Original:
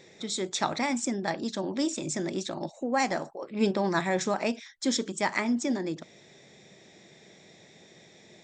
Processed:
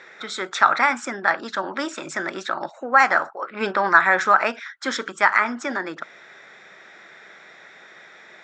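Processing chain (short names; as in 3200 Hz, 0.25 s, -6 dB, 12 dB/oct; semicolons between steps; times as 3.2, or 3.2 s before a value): band-pass 1400 Hz, Q 5.4; maximiser +26.5 dB; gain -1 dB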